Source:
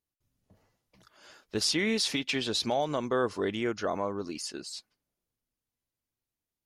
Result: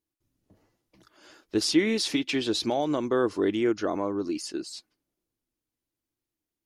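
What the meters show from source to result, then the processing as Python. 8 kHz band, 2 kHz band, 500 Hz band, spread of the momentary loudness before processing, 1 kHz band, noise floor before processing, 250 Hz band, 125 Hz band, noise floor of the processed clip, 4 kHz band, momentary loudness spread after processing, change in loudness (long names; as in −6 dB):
0.0 dB, 0.0 dB, +3.5 dB, 11 LU, +0.5 dB, below −85 dBFS, +7.0 dB, +0.5 dB, below −85 dBFS, 0.0 dB, 10 LU, +3.0 dB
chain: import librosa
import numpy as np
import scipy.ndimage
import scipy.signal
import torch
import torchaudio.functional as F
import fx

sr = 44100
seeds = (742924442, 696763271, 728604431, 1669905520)

y = fx.peak_eq(x, sr, hz=320.0, db=11.5, octaves=0.5)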